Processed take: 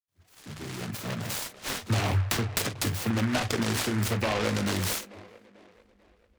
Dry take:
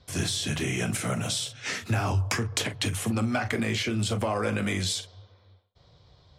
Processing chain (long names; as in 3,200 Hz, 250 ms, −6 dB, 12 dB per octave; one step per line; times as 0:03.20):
fade in at the beginning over 1.89 s
noise reduction from a noise print of the clip's start 24 dB
delay with a band-pass on its return 442 ms, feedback 44%, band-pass 540 Hz, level −15.5 dB
short delay modulated by noise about 1,400 Hz, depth 0.16 ms